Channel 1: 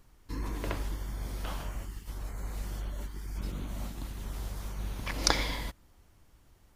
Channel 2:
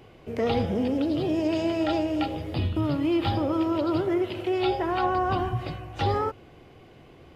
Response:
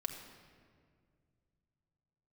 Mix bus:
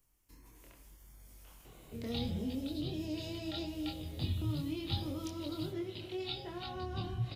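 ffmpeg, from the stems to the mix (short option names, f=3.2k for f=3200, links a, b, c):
-filter_complex "[0:a]highshelf=f=10k:g=7.5,acompressor=threshold=-40dB:ratio=3,aexciter=amount=1.9:drive=4.1:freq=2.2k,volume=-14dB[a];[1:a]equalizer=f=3.9k:w=4.4:g=10.5,adelay=1650,volume=-3.5dB[b];[a][b]amix=inputs=2:normalize=0,acrossover=split=250|3000[c][d][e];[d]acompressor=threshold=-55dB:ratio=2[f];[c][f][e]amix=inputs=3:normalize=0,flanger=delay=22.5:depth=3.8:speed=0.77"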